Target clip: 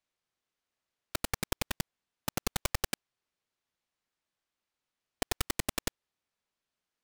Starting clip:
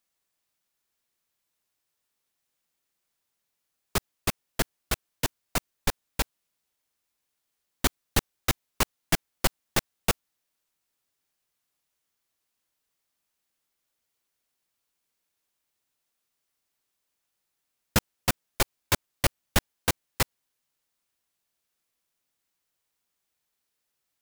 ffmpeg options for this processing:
-af "adynamicsmooth=sensitivity=7:basefreq=1800,aeval=exprs='(tanh(25.1*val(0)+0.45)-tanh(0.45))/25.1':c=same,asetrate=151704,aresample=44100,volume=1.68"

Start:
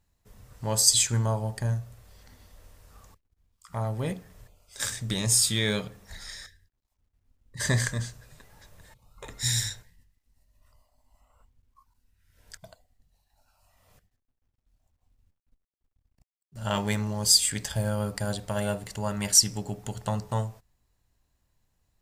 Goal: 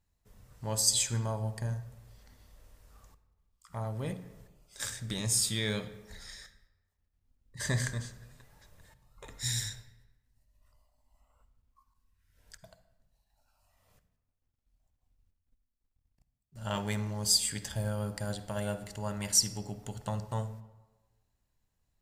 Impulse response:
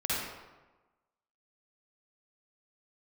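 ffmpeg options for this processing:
-filter_complex "[0:a]asplit=2[s0][s1];[1:a]atrim=start_sample=2205,lowshelf=f=240:g=7[s2];[s1][s2]afir=irnorm=-1:irlink=0,volume=0.0891[s3];[s0][s3]amix=inputs=2:normalize=0,volume=0.447"

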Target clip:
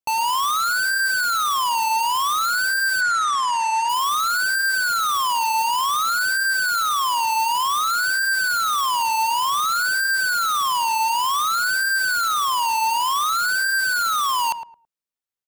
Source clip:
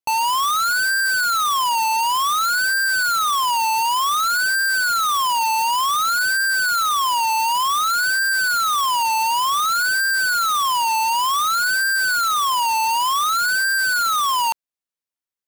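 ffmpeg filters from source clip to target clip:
-filter_complex "[0:a]asplit=3[s0][s1][s2];[s0]afade=t=out:st=3:d=0.02[s3];[s1]highpass=150,equalizer=f=380:t=q:w=4:g=-5,equalizer=f=570:t=q:w=4:g=-4,equalizer=f=1800:t=q:w=4:g=10,equalizer=f=3000:t=q:w=4:g=-4,equalizer=f=4400:t=q:w=4:g=-6,lowpass=f=8400:w=0.5412,lowpass=f=8400:w=1.3066,afade=t=in:st=3:d=0.02,afade=t=out:st=3.88:d=0.02[s4];[s2]afade=t=in:st=3.88:d=0.02[s5];[s3][s4][s5]amix=inputs=3:normalize=0,asplit=2[s6][s7];[s7]adelay=109,lowpass=f=1100:p=1,volume=0.422,asplit=2[s8][s9];[s9]adelay=109,lowpass=f=1100:p=1,volume=0.24,asplit=2[s10][s11];[s11]adelay=109,lowpass=f=1100:p=1,volume=0.24[s12];[s6][s8][s10][s12]amix=inputs=4:normalize=0,volume=0.794"

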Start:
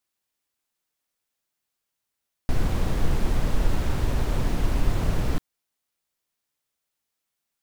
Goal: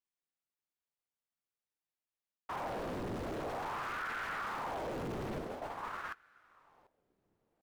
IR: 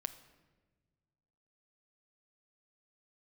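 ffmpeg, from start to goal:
-af "highpass=f=150:p=1,highshelf=f=2600:g=-9.5,aecho=1:1:743|1486|2229:0.282|0.062|0.0136,asoftclip=type=tanh:threshold=0.0237,agate=range=0.141:threshold=0.00794:ratio=16:detection=peak,areverse,acompressor=threshold=0.00562:ratio=5,areverse,aeval=exprs='val(0)*sin(2*PI*850*n/s+850*0.7/0.48*sin(2*PI*0.48*n/s))':c=same,volume=2.82"

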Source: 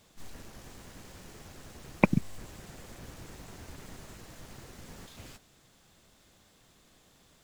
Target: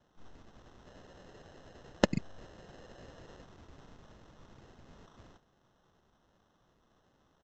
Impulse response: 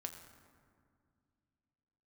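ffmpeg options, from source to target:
-filter_complex "[0:a]asettb=1/sr,asplit=3[s0][s1][s2];[s0]atrim=end=0.864[s3];[s1]atrim=start=0.86:end=3.44,asetpts=PTS-STARTPTS,afade=t=in:d=0.004:c=qsin,afade=t=out:st=2.576:d=0.004:c=qsin,equalizer=f=560:t=o:w=1.2:g=9.5[s4];[s2]atrim=start=3.436[s5];[s3][s4]acrossfade=d=0.004:c1=hsin:c2=qsin[s6];[s6][s5]acrossfade=d=0.004:c1=qsin:c2=hsin,acrusher=samples=19:mix=1:aa=0.000001,aresample=16000,aresample=44100,volume=0.398"

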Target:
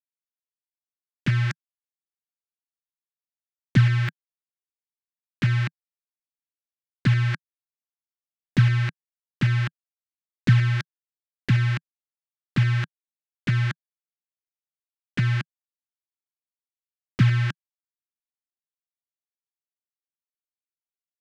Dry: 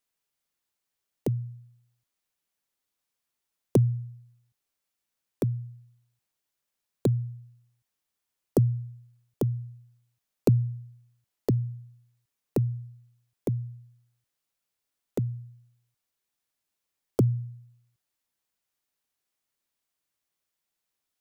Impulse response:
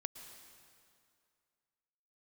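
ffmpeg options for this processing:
-af "aeval=exprs='val(0)+0.5*0.0422*sgn(val(0))':c=same,acrusher=bits=4:mix=0:aa=0.000001,equalizer=f=340:t=o:w=2.8:g=8,areverse,acompressor=mode=upward:threshold=0.0891:ratio=2.5,areverse,firequalizer=gain_entry='entry(160,0);entry(420,-26);entry(1600,9);entry(12000,-25)':delay=0.05:min_phase=1"

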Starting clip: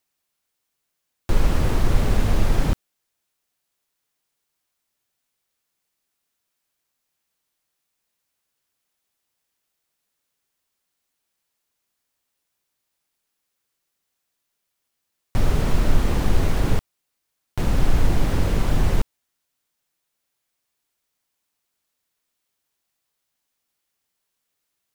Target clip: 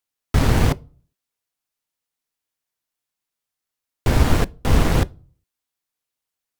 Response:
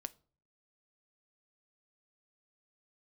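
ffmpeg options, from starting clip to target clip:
-filter_complex "[0:a]aeval=exprs='0.631*(cos(1*acos(clip(val(0)/0.631,-1,1)))-cos(1*PI/2))+0.0224*(cos(7*acos(clip(val(0)/0.631,-1,1)))-cos(7*PI/2))':c=same,bandreject=f=50:t=h:w=6,bandreject=f=100:t=h:w=6,bandreject=f=150:t=h:w=6,asetrate=166698,aresample=44100,asplit=2[s0][s1];[1:a]atrim=start_sample=2205[s2];[s1][s2]afir=irnorm=-1:irlink=0,volume=1.33[s3];[s0][s3]amix=inputs=2:normalize=0,volume=0.631"

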